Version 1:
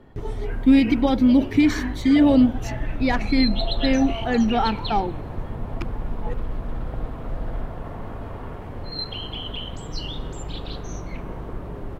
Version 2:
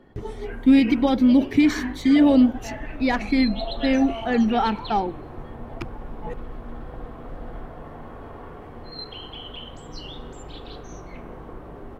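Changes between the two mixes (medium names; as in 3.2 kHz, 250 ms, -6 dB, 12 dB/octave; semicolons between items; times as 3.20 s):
background -7.5 dB; reverb: on, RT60 0.50 s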